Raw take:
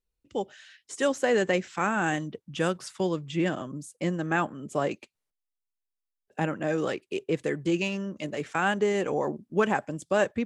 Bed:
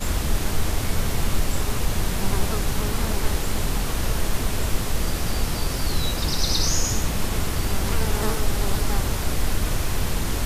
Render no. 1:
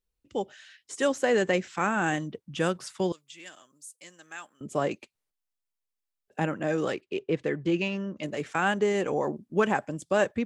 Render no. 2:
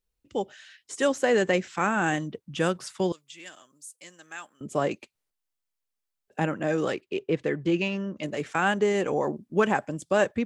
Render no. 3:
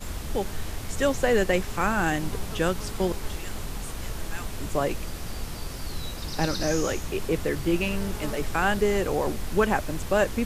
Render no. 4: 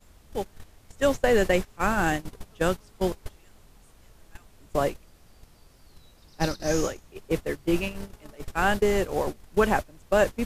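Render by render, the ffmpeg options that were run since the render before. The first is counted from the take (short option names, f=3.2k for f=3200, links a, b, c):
-filter_complex "[0:a]asettb=1/sr,asplit=3[a][b][c];[a]atrim=end=3.124[d];[b]atrim=start=3.12:end=4.61,asetpts=PTS-STARTPTS,afade=t=in:d=0.004:c=qsin,afade=t=out:st=1.486:d=0.004:c=qsin,aderivative[e];[c]atrim=start=4.606[f];[d][e]acrossfade=d=0.004:c1=hsin:c2=qsin[g];[g][f]acrossfade=d=0.004:c1=qsin:c2=hsin,asettb=1/sr,asplit=3[h][i][j];[h]atrim=end=7.014[k];[i]atrim=start=7.01:end=8.23,asetpts=PTS-STARTPTS,afade=t=in:d=0.004:c=qsin,afade=t=out:st=1.216:d=0.004:c=qsin,lowpass=4.2k[l];[j]atrim=start=8.226[m];[k][l]acrossfade=d=0.004:c1=hsin:c2=qsin[n];[n][m]acrossfade=d=0.004:c1=qsin:c2=hsin"
-af "volume=1.5dB"
-filter_complex "[1:a]volume=-10dB[a];[0:a][a]amix=inputs=2:normalize=0"
-af "agate=range=-21dB:threshold=-24dB:ratio=16:detection=peak,equalizer=f=620:w=1.5:g=2"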